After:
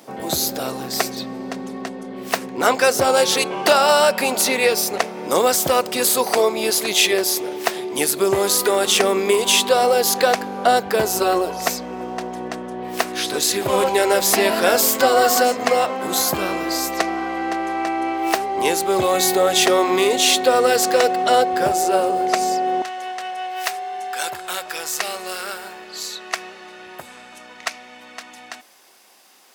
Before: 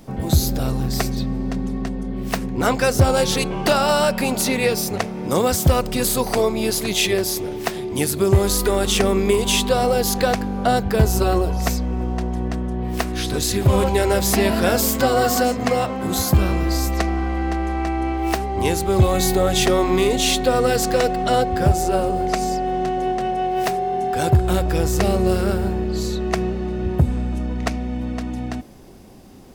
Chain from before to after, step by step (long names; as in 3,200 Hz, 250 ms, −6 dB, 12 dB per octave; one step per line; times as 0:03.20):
high-pass filter 410 Hz 12 dB per octave, from 0:22.82 1,200 Hz
level +4 dB